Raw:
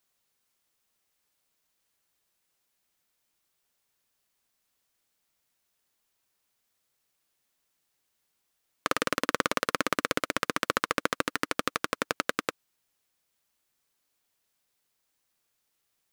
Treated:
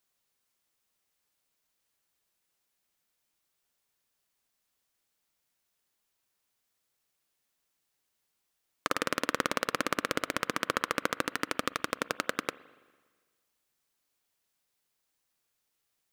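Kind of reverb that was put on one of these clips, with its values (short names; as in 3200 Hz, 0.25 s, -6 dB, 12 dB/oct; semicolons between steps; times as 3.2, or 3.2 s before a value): spring tank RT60 1.5 s, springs 41/56 ms, chirp 80 ms, DRR 18.5 dB; gain -2.5 dB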